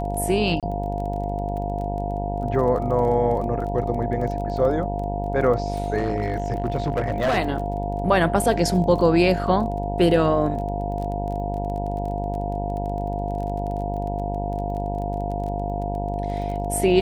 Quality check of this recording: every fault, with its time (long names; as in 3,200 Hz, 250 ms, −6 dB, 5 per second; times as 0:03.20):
mains buzz 50 Hz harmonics 19 −28 dBFS
surface crackle 21 per second −31 dBFS
whistle 700 Hz −29 dBFS
0:00.60–0:00.63: drop-out 27 ms
0:05.98–0:07.38: clipping −17.5 dBFS